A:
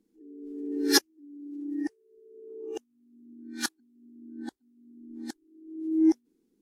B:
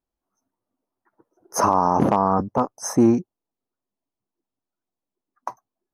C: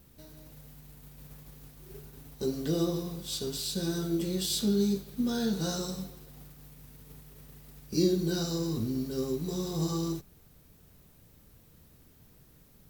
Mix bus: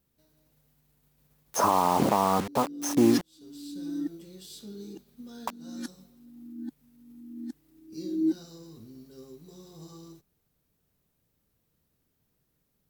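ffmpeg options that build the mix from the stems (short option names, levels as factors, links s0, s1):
-filter_complex "[0:a]lowshelf=f=360:t=q:w=3:g=11,adelay=2200,volume=0.188[s0];[1:a]acrusher=bits=4:mix=0:aa=0.000001,volume=0.596,asplit=2[s1][s2];[2:a]volume=0.178[s3];[s2]apad=whole_len=568542[s4];[s3][s4]sidechaincompress=threshold=0.0158:ratio=8:attack=7.1:release=348[s5];[s0][s1][s5]amix=inputs=3:normalize=0,lowshelf=f=110:g=-6.5"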